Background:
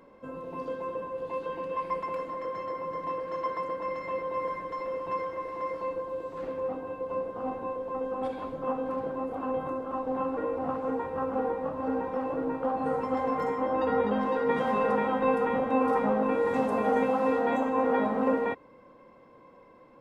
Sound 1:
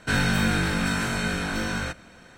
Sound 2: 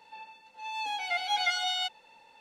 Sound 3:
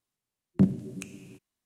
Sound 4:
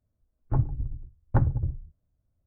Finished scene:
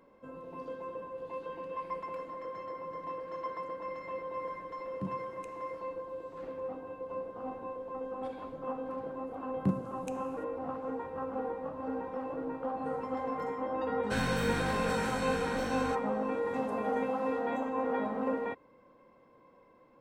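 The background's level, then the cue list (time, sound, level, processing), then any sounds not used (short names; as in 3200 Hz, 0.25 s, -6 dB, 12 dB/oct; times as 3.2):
background -6.5 dB
4.42 add 3 -17 dB
9.06 add 3 -8 dB
14.03 add 1 -10.5 dB
not used: 2, 4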